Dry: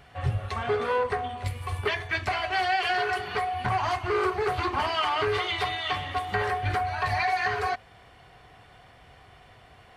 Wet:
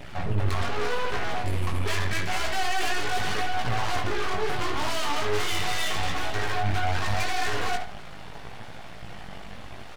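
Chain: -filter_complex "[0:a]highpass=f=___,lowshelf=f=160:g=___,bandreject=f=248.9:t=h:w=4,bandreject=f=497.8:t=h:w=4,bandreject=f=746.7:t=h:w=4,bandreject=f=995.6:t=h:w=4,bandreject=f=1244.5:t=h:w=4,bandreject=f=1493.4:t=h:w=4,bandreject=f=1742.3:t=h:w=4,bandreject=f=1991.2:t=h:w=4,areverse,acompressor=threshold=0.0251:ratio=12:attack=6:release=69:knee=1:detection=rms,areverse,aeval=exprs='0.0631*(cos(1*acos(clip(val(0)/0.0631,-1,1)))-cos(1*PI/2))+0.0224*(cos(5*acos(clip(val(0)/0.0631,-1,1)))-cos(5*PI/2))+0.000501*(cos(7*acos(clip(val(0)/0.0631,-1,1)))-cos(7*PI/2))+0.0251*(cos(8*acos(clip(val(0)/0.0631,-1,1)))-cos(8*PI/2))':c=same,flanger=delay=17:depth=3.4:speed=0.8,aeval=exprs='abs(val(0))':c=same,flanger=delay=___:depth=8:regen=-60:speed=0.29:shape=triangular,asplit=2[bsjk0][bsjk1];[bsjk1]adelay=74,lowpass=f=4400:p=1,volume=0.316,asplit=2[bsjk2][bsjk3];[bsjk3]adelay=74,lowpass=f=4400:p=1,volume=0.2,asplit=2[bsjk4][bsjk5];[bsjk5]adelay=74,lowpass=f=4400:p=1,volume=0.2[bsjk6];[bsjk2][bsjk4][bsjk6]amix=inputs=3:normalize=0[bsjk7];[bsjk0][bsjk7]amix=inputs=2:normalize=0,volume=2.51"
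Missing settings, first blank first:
43, 8.5, 0.3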